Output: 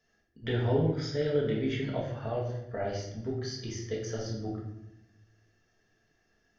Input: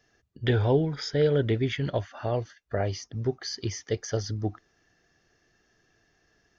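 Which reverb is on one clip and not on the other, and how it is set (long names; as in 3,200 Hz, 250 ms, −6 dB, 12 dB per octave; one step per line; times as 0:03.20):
rectangular room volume 290 cubic metres, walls mixed, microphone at 1.6 metres
level −9.5 dB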